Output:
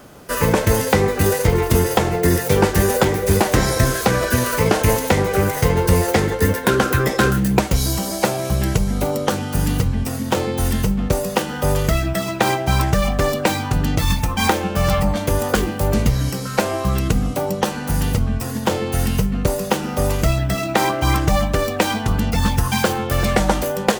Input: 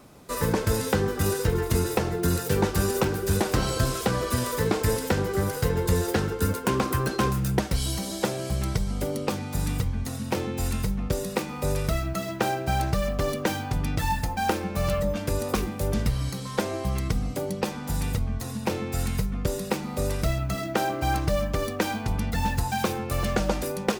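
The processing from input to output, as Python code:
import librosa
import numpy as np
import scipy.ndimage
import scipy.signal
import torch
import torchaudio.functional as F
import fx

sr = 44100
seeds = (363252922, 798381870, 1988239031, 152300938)

y = fx.formant_shift(x, sr, semitones=4)
y = y * librosa.db_to_amplitude(8.0)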